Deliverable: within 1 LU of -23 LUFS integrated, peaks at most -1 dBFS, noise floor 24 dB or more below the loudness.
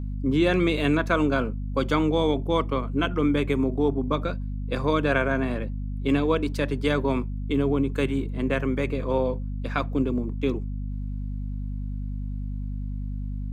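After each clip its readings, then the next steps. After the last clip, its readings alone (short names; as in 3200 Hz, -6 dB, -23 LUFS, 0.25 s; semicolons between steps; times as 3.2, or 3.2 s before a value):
hum 50 Hz; harmonics up to 250 Hz; hum level -28 dBFS; loudness -26.0 LUFS; peak -9.0 dBFS; loudness target -23.0 LUFS
-> de-hum 50 Hz, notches 5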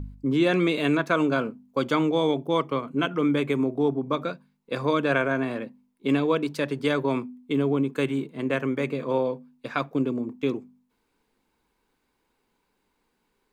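hum none; loudness -26.0 LUFS; peak -9.0 dBFS; loudness target -23.0 LUFS
-> gain +3 dB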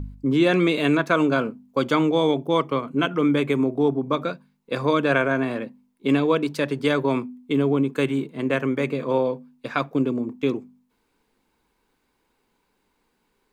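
loudness -23.0 LUFS; peak -6.0 dBFS; noise floor -71 dBFS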